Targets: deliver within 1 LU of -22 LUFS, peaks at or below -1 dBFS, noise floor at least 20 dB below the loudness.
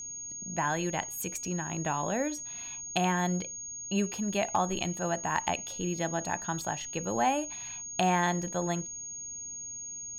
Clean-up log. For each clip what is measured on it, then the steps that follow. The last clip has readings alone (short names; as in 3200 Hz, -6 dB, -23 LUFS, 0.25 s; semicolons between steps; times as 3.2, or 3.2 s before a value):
steady tone 6600 Hz; tone level -38 dBFS; loudness -31.5 LUFS; peak -15.0 dBFS; loudness target -22.0 LUFS
-> notch 6600 Hz, Q 30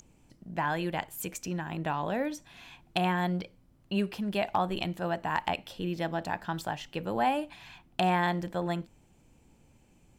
steady tone none; loudness -32.0 LUFS; peak -15.5 dBFS; loudness target -22.0 LUFS
-> gain +10 dB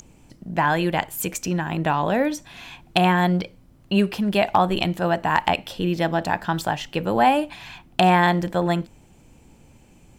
loudness -22.0 LUFS; peak -5.5 dBFS; noise floor -53 dBFS